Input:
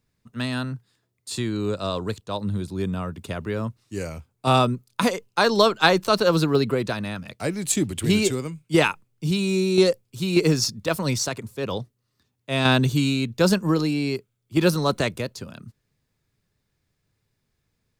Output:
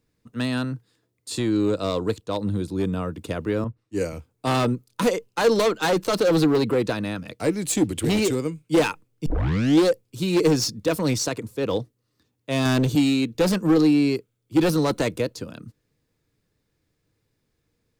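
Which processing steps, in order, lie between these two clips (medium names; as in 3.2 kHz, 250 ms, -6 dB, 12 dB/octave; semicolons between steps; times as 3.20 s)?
9.26 s: tape start 0.59 s; 12.95–13.35 s: high-pass 160 Hz 12 dB/octave; hard clipper -19.5 dBFS, distortion -8 dB; small resonant body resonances 310/470 Hz, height 9 dB, ringing for 45 ms; 3.64–4.13 s: three bands expanded up and down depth 100%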